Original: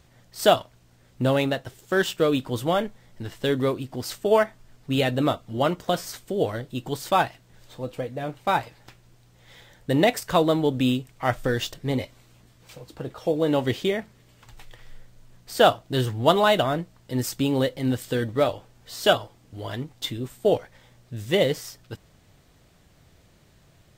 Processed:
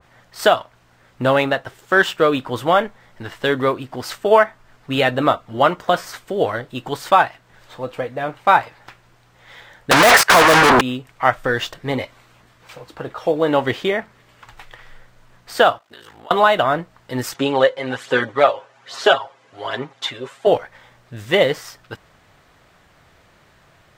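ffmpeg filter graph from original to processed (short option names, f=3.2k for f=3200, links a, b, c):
-filter_complex "[0:a]asettb=1/sr,asplit=3[a][b][c];[a]atrim=end=9.914[d];[b]atrim=start=9.91:end=10.81,asetpts=PTS-STARTPTS,afade=t=in:d=0.004:c=qsin,afade=t=out:st=0.896:d=0.004:c=qsin,agate=range=-28dB:threshold=-34dB:ratio=16:release=100:detection=peak,asplit=2[e][f];[f]highpass=f=720:p=1,volume=33dB,asoftclip=type=tanh:threshold=-6.5dB[g];[e][g]amix=inputs=2:normalize=0,lowpass=f=5.7k:p=1,volume=-6dB,aeval=exprs='0.473*sin(PI/2*3.98*val(0)/0.473)':c=same[h];[c]atrim=start=10.806[i];[d][h]acrossfade=d=0.004:c1=hsin:c2=qsin[j];[j][i]acrossfade=d=0.004:c1=qsin:c2=hsin,asettb=1/sr,asplit=3[k][l][m];[k]atrim=end=15.784[n];[l]atrim=start=15.78:end=16.31,asetpts=PTS-STARTPTS,afade=t=in:d=0.004:c=qsin,afade=t=out:st=0.526:d=0.004:c=qsin,highpass=f=1k:p=1,acompressor=threshold=-40dB:ratio=16:attack=3.2:release=140:knee=1:detection=peak,aeval=exprs='val(0)*sin(2*PI*27*n/s)':c=same[o];[m]atrim=start=16.306[p];[n][o]acrossfade=d=0.004:c1=hsin:c2=qsin[q];[q][p]acrossfade=d=0.004:c1=qsin:c2=hsin,asettb=1/sr,asplit=3[r][s][t];[r]atrim=end=17.344[u];[s]atrim=start=17.34:end=20.47,asetpts=PTS-STARTPTS,afade=t=in:d=0.004:c=qsin,afade=t=out:st=3.126:d=0.004:c=qsin,aecho=1:1:7.4:0.83,atrim=end_sample=138033,aphaser=in_gain=1:out_gain=1:delay=2:decay=0.39:speed=1.2:type=sinusoidal,highpass=260,equalizer=f=270:t=q:w=4:g=-6,equalizer=f=4.9k:t=q:w=4:g=-3,equalizer=f=8.6k:t=q:w=4:g=-8,lowpass=f=9.8k:w=0.5412,lowpass=f=9.8k:w=1.3066[v];[t]atrim=start=20.466[w];[u][v]acrossfade=d=0.004:c1=hsin:c2=qsin[x];[x][w]acrossfade=d=0.004:c1=qsin:c2=hsin,equalizer=f=1.3k:t=o:w=2.7:g=13.5,alimiter=limit=-0.5dB:level=0:latency=1:release=299,adynamicequalizer=threshold=0.0398:dfrequency=1800:dqfactor=0.7:tfrequency=1800:tqfactor=0.7:attack=5:release=100:ratio=0.375:range=1.5:mode=cutabove:tftype=highshelf,volume=-1dB"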